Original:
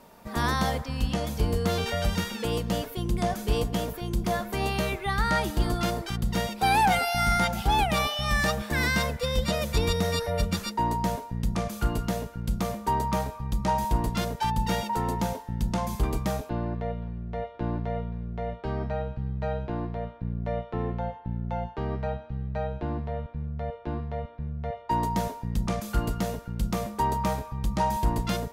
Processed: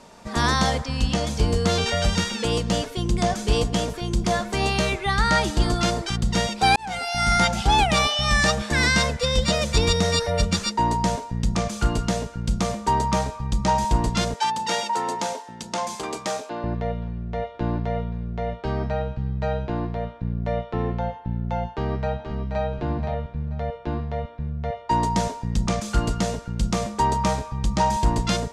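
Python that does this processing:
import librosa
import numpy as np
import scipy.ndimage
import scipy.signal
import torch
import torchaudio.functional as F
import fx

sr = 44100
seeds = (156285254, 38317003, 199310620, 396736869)

y = fx.highpass(x, sr, hz=380.0, slope=12, at=(14.34, 16.64))
y = fx.echo_throw(y, sr, start_s=21.71, length_s=0.95, ms=480, feedback_pct=25, wet_db=-7.0)
y = fx.edit(y, sr, fx.fade_in_span(start_s=6.76, length_s=0.65), tone=tone)
y = scipy.signal.sosfilt(scipy.signal.butter(4, 7800.0, 'lowpass', fs=sr, output='sos'), y)
y = fx.high_shelf(y, sr, hz=4900.0, db=10.0)
y = F.gain(torch.from_numpy(y), 4.5).numpy()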